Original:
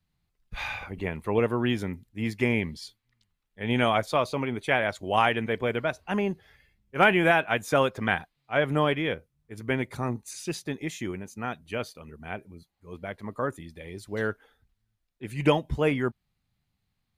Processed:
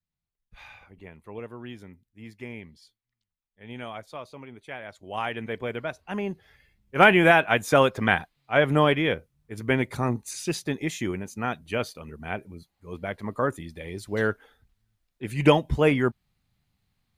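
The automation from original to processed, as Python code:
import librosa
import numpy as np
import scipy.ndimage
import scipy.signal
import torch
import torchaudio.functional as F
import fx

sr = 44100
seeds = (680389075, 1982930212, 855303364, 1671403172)

y = fx.gain(x, sr, db=fx.line((4.81, -14.0), (5.47, -4.0), (6.12, -4.0), (6.96, 4.0)))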